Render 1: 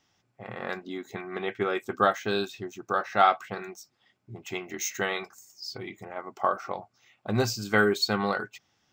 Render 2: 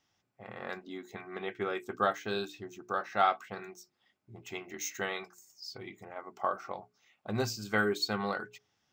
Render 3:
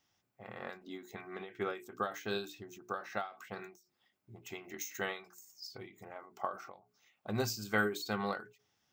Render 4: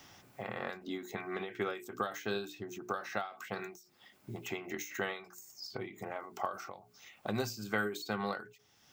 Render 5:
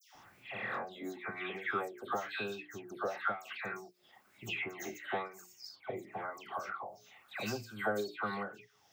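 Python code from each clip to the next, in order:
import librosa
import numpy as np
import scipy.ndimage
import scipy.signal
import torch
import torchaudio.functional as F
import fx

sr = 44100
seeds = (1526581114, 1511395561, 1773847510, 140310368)

y1 = fx.hum_notches(x, sr, base_hz=60, count=7)
y1 = F.gain(torch.from_numpy(y1), -6.0).numpy()
y2 = fx.high_shelf(y1, sr, hz=11000.0, db=10.0)
y2 = fx.end_taper(y2, sr, db_per_s=140.0)
y2 = F.gain(torch.from_numpy(y2), -2.0).numpy()
y3 = fx.band_squash(y2, sr, depth_pct=70)
y3 = F.gain(torch.from_numpy(y3), 1.5).numpy()
y4 = fx.dispersion(y3, sr, late='lows', ms=145.0, hz=1900.0)
y4 = fx.bell_lfo(y4, sr, hz=1.0, low_hz=550.0, high_hz=2800.0, db=14)
y4 = F.gain(torch.from_numpy(y4), -4.5).numpy()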